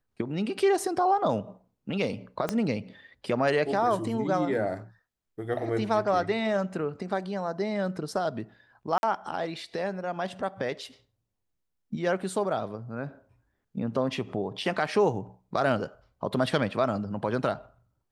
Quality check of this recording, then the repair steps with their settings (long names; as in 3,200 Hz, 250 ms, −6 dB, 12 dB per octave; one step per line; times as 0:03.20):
0:02.49: click −13 dBFS
0:08.98–0:09.03: drop-out 51 ms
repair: click removal
repair the gap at 0:08.98, 51 ms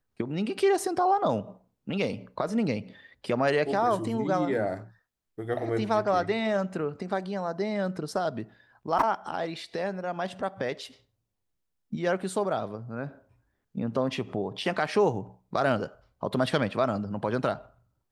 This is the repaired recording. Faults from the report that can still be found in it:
0:02.49: click